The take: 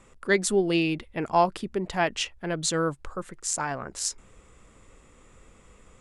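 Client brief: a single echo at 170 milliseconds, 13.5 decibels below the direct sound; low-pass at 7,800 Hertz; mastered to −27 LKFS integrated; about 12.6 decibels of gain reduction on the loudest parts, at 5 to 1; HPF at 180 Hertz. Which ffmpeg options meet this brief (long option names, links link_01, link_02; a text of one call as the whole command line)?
ffmpeg -i in.wav -af "highpass=180,lowpass=7800,acompressor=threshold=-31dB:ratio=5,aecho=1:1:170:0.211,volume=8.5dB" out.wav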